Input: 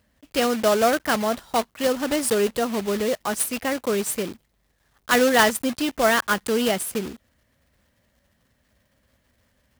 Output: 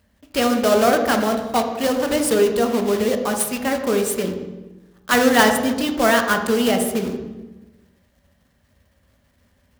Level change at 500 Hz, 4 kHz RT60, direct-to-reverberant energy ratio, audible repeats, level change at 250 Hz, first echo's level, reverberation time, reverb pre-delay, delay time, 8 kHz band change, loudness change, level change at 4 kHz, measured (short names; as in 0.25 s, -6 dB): +4.0 dB, 0.80 s, 4.0 dB, none, +5.5 dB, none, 1.1 s, 3 ms, none, +1.5 dB, +3.5 dB, +2.0 dB